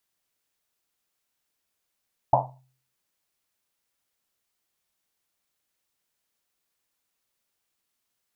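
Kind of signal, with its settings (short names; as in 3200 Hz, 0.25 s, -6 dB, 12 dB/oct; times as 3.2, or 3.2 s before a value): Risset drum, pitch 130 Hz, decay 0.53 s, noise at 780 Hz, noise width 360 Hz, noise 75%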